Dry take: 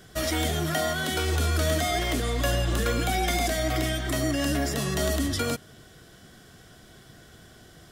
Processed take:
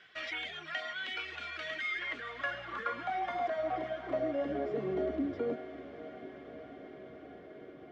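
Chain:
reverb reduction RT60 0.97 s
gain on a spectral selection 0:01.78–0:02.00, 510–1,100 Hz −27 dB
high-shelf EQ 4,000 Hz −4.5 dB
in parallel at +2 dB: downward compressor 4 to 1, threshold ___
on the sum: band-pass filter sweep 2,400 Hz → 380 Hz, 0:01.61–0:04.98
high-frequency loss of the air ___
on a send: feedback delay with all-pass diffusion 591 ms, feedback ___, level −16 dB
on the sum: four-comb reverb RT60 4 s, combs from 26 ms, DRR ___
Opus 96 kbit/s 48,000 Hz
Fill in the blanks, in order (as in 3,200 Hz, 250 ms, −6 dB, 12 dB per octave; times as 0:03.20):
−39 dBFS, 150 metres, 80%, 19 dB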